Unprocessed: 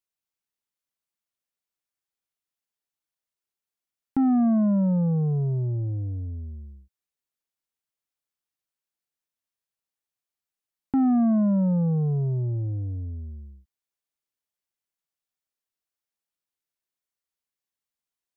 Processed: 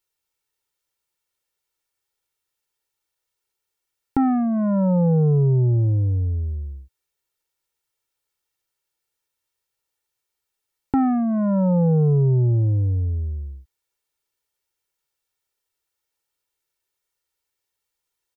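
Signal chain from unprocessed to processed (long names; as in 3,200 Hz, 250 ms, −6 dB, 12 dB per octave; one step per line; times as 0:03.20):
comb filter 2.2 ms, depth 63%
level +7.5 dB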